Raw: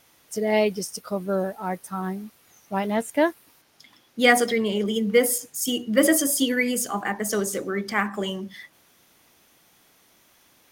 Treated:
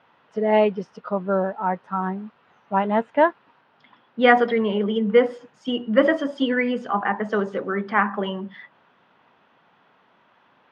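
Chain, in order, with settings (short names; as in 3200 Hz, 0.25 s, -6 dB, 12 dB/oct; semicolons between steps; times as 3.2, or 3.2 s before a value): speaker cabinet 150–2700 Hz, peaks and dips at 320 Hz -7 dB, 950 Hz +6 dB, 1400 Hz +3 dB, 2200 Hz -7 dB; gain +3.5 dB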